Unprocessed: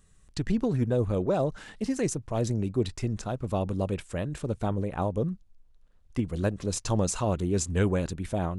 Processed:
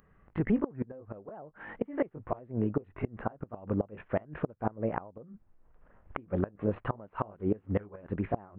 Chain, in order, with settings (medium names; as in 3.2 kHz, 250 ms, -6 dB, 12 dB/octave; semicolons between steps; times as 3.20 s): sawtooth pitch modulation +2 st, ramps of 709 ms; recorder AGC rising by 16 dB/s; Gaussian low-pass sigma 5.9 samples; tilt EQ +3.5 dB/octave; inverted gate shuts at -26 dBFS, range -24 dB; trim +9 dB